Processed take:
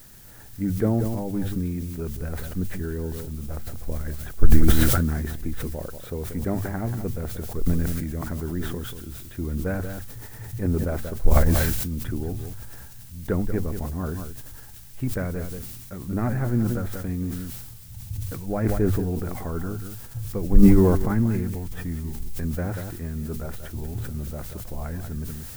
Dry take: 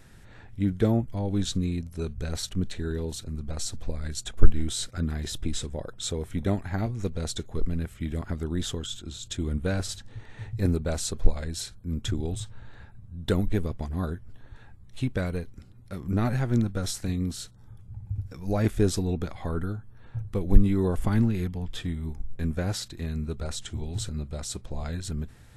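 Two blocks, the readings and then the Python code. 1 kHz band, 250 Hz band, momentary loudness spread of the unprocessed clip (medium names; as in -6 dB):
+4.0 dB, +4.0 dB, 12 LU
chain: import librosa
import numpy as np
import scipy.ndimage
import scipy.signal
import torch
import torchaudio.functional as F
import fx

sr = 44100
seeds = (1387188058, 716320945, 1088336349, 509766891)

y = scipy.signal.sosfilt(scipy.signal.butter(4, 2000.0, 'lowpass', fs=sr, output='sos'), x)
y = y + 10.0 ** (-12.0 / 20.0) * np.pad(y, (int(185 * sr / 1000.0), 0))[:len(y)]
y = fx.dmg_noise_colour(y, sr, seeds[0], colour='blue', level_db=-50.0)
y = fx.hum_notches(y, sr, base_hz=50, count=2)
y = fx.sustainer(y, sr, db_per_s=30.0)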